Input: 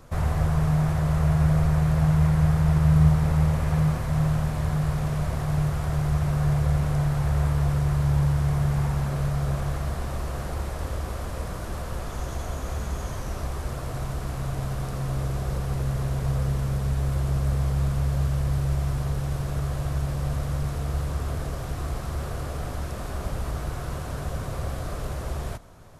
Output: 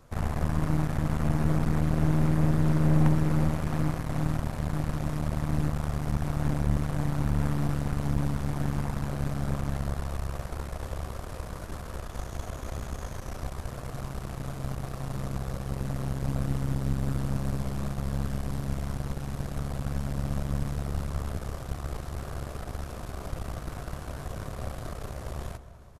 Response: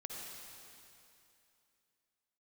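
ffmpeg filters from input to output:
-filter_complex "[0:a]asplit=2[link_01][link_02];[link_02]adelay=200,lowpass=frequency=2000:poles=1,volume=-12.5dB,asplit=2[link_03][link_04];[link_04]adelay=200,lowpass=frequency=2000:poles=1,volume=0.51,asplit=2[link_05][link_06];[link_06]adelay=200,lowpass=frequency=2000:poles=1,volume=0.51,asplit=2[link_07][link_08];[link_08]adelay=200,lowpass=frequency=2000:poles=1,volume=0.51,asplit=2[link_09][link_10];[link_10]adelay=200,lowpass=frequency=2000:poles=1,volume=0.51[link_11];[link_01][link_03][link_05][link_07][link_09][link_11]amix=inputs=6:normalize=0,aeval=exprs='0.501*(cos(1*acos(clip(val(0)/0.501,-1,1)))-cos(1*PI/2))+0.224*(cos(4*acos(clip(val(0)/0.501,-1,1)))-cos(4*PI/2))+0.158*(cos(6*acos(clip(val(0)/0.501,-1,1)))-cos(6*PI/2))+0.112*(cos(8*acos(clip(val(0)/0.501,-1,1)))-cos(8*PI/2))':channel_layout=same,volume=-6.5dB"

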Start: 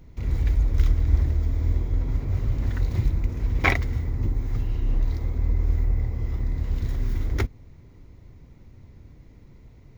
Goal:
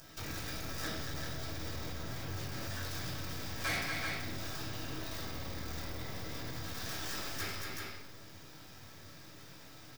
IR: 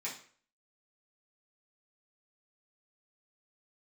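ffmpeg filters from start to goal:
-filter_complex "[0:a]aemphasis=mode=production:type=riaa,aeval=exprs='max(val(0),0)':channel_layout=same,aecho=1:1:231|382:0.316|0.335[link_01];[1:a]atrim=start_sample=2205,asetrate=31311,aresample=44100[link_02];[link_01][link_02]afir=irnorm=-1:irlink=0,asoftclip=type=tanh:threshold=-26.5dB,alimiter=level_in=13dB:limit=-24dB:level=0:latency=1:release=149,volume=-13dB,volume=5.5dB"

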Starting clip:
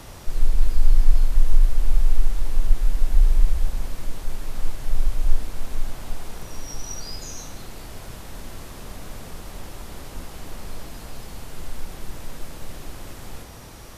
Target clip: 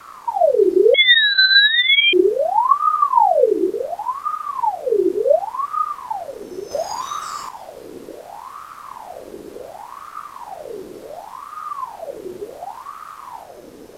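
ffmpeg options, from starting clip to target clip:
ffmpeg -i in.wav -filter_complex "[0:a]equalizer=frequency=110:width=0.43:gain=12,acrossover=split=180|460|2000[link_01][link_02][link_03][link_04];[link_02]alimiter=level_in=17dB:limit=-24dB:level=0:latency=1,volume=-17dB[link_05];[link_01][link_05][link_03][link_04]amix=inputs=4:normalize=0,asettb=1/sr,asplit=3[link_06][link_07][link_08];[link_06]atrim=end=0.944[link_09];[link_07]atrim=start=0.94:end=2.13,asetpts=PTS-STARTPTS,afade=type=in:duration=0.004:curve=qsin,afade=type=out:start_time=1.186:duration=0.004:curve=qsin,lowpass=frequency=2400:width_type=q:width=0.5098,lowpass=frequency=2400:width_type=q:width=0.6013,lowpass=frequency=2400:width_type=q:width=0.9,lowpass=frequency=2400:width_type=q:width=2.563,afreqshift=-2800[link_10];[link_08]atrim=start=2.126[link_11];[link_09][link_10]acrossfade=duration=0.004:curve1=hsin:curve2=qsin[link_12];[link_12][link_11]acrossfade=duration=0.004:curve1=qsin:curve2=hsin,asettb=1/sr,asplit=3[link_13][link_14][link_15];[link_13]atrim=end=6.714[link_16];[link_14]atrim=start=6.71:end=7.49,asetpts=PTS-STARTPTS,afade=type=in:duration=0.004:curve=qsin,afade=type=out:start_time=0.776:duration=0.004:curve=qsin,acontrast=69[link_17];[link_15]atrim=start=7.486[link_18];[link_16][link_17]acrossfade=duration=0.004:curve1=hsin:curve2=qsin[link_19];[link_19][link_18]acrossfade=duration=0.004:curve1=qsin:curve2=hsin,aeval=exprs='val(0)*sin(2*PI*800*n/s+800*0.55/0.69*sin(2*PI*0.69*n/s))':channel_layout=same,volume=-2.5dB" out.wav

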